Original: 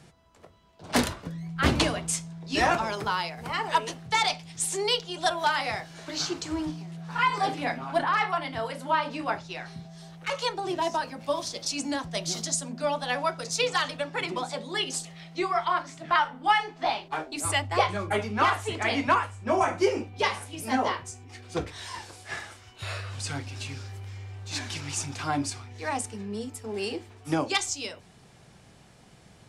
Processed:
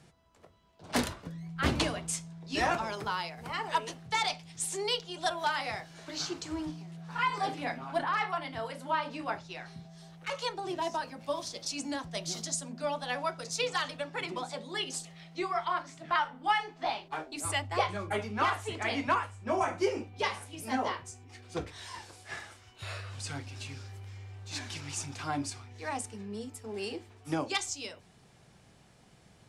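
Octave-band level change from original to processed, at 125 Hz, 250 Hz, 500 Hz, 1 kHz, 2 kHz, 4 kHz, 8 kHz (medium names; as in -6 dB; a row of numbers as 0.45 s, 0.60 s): -5.5 dB, -5.5 dB, -5.5 dB, -5.5 dB, -5.5 dB, -5.5 dB, -5.5 dB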